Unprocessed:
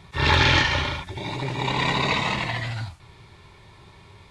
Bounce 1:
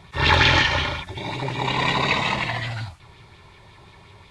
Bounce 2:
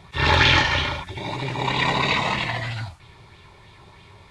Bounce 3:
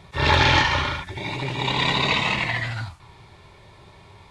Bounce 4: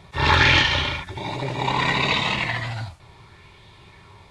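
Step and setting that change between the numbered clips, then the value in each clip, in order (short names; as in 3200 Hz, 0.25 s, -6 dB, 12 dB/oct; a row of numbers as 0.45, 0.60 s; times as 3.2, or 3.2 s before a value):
LFO bell, rate: 5.5, 3.1, 0.27, 0.68 Hz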